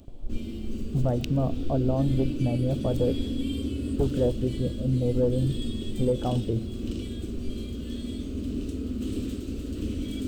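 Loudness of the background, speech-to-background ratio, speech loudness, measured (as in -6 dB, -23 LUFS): -33.0 LUFS, 5.0 dB, -28.0 LUFS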